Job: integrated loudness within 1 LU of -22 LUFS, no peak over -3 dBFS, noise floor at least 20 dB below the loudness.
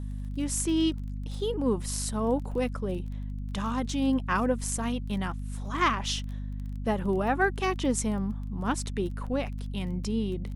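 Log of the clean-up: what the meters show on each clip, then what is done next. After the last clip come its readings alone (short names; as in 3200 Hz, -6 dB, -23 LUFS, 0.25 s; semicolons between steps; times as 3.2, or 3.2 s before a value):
ticks 19/s; hum 50 Hz; harmonics up to 250 Hz; hum level -32 dBFS; loudness -30.0 LUFS; peak -12.0 dBFS; loudness target -22.0 LUFS
-> de-click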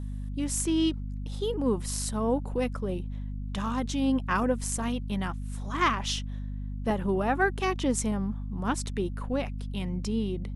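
ticks 0/s; hum 50 Hz; harmonics up to 250 Hz; hum level -32 dBFS
-> de-hum 50 Hz, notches 5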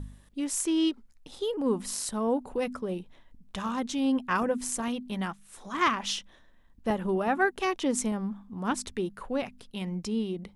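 hum none; loudness -30.5 LUFS; peak -12.5 dBFS; loudness target -22.0 LUFS
-> gain +8.5 dB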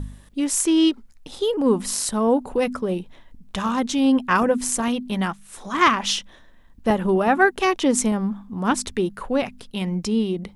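loudness -22.0 LUFS; peak -4.0 dBFS; noise floor -49 dBFS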